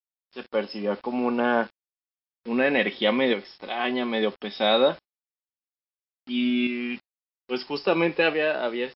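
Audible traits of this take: tremolo saw up 0.6 Hz, depth 50%; a quantiser's noise floor 8-bit, dither none; MP3

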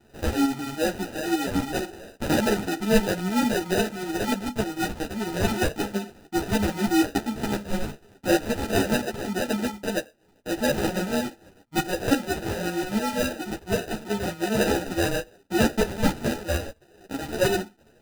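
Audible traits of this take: aliases and images of a low sample rate 1100 Hz, jitter 0%; tremolo saw up 6.7 Hz, depth 55%; a shimmering, thickened sound

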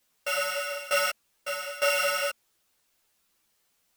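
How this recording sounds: a buzz of ramps at a fixed pitch in blocks of 16 samples; tremolo saw down 1.1 Hz, depth 90%; a quantiser's noise floor 12-bit, dither triangular; a shimmering, thickened sound

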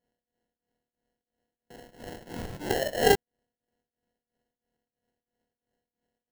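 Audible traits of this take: a buzz of ramps at a fixed pitch in blocks of 8 samples; tremolo triangle 3 Hz, depth 90%; aliases and images of a low sample rate 1200 Hz, jitter 0%

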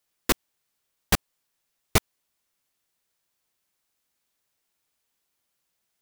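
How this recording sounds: noise floor -78 dBFS; spectral tilt -3.0 dB/oct

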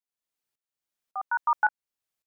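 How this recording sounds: tremolo saw up 1.8 Hz, depth 85%

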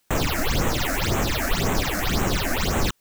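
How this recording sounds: aliases and images of a low sample rate 9600 Hz, jitter 0%; phasing stages 8, 1.9 Hz, lowest notch 120–4700 Hz; a quantiser's noise floor 12-bit, dither triangular

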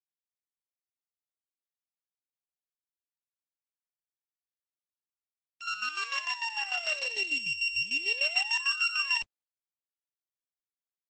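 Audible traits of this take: a buzz of ramps at a fixed pitch in blocks of 16 samples; chopped level 6.7 Hz, depth 65%, duty 45%; a quantiser's noise floor 12-bit, dither none; Opus

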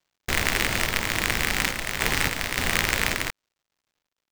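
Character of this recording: a quantiser's noise floor 12-bit, dither none; random-step tremolo; aliases and images of a low sample rate 11000 Hz, jitter 20%

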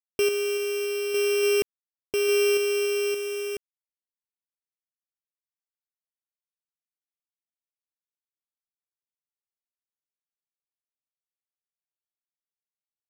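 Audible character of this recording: a buzz of ramps at a fixed pitch in blocks of 16 samples; random-step tremolo, depth 70%; a quantiser's noise floor 8-bit, dither none

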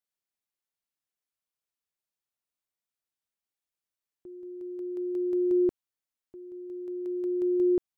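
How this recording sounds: noise floor -92 dBFS; spectral tilt +13.5 dB/oct

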